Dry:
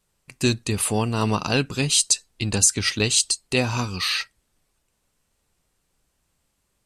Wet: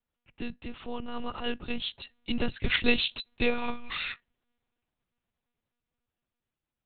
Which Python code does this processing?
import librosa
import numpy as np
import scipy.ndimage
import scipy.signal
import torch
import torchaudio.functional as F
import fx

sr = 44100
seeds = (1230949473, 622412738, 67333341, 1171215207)

y = fx.doppler_pass(x, sr, speed_mps=18, closest_m=9.1, pass_at_s=2.84)
y = fx.lpc_monotone(y, sr, seeds[0], pitch_hz=240.0, order=8)